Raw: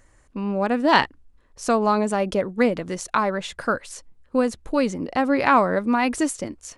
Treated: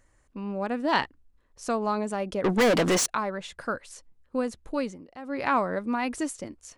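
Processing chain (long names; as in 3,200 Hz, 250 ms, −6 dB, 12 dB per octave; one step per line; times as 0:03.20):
0:02.44–0:03.06: mid-hump overdrive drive 37 dB, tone 5,900 Hz, clips at −6.5 dBFS
0:04.79–0:05.46: duck −13 dB, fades 0.25 s
level −7.5 dB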